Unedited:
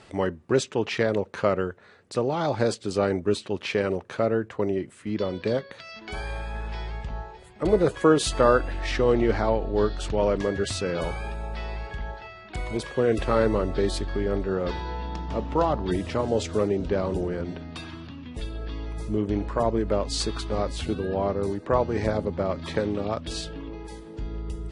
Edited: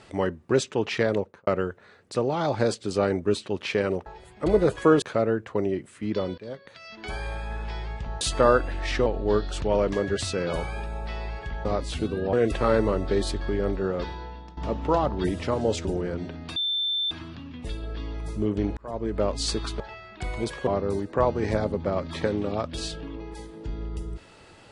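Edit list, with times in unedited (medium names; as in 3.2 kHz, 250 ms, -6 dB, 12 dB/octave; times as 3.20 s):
1.15–1.47 s: studio fade out
5.42–6.06 s: fade in, from -20.5 dB
7.25–8.21 s: move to 4.06 s
9.06–9.54 s: delete
12.13–13.00 s: swap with 20.52–21.20 s
14.50–15.24 s: fade out, to -16.5 dB
16.52–17.12 s: delete
17.83 s: add tone 3.55 kHz -23.5 dBFS 0.55 s
19.49–19.96 s: fade in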